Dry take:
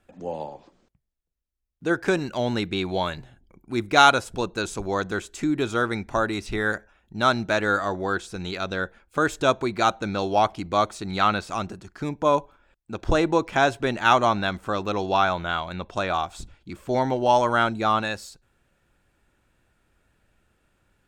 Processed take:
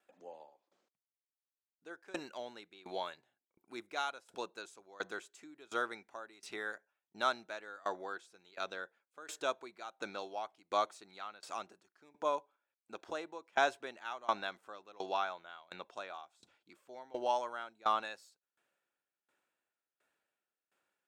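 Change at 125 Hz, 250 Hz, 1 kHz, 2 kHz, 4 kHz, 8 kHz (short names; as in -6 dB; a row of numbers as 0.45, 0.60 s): under -30 dB, -24.0 dB, -15.5 dB, -16.0 dB, -16.0 dB, -15.5 dB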